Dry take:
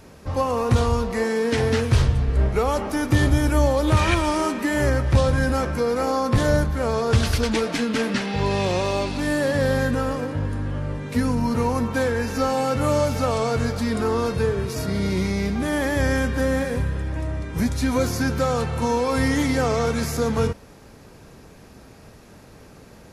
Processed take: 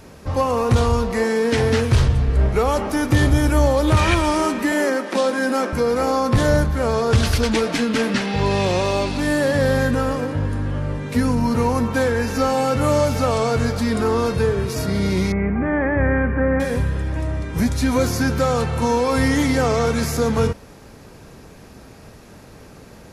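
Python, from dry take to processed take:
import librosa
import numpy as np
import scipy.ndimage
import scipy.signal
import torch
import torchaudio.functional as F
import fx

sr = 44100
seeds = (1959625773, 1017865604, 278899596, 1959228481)

y = fx.steep_highpass(x, sr, hz=200.0, slope=72, at=(4.72, 5.73))
y = 10.0 ** (-9.0 / 20.0) * np.tanh(y / 10.0 ** (-9.0 / 20.0))
y = fx.steep_lowpass(y, sr, hz=2300.0, slope=48, at=(15.32, 16.6))
y = y * 10.0 ** (3.5 / 20.0)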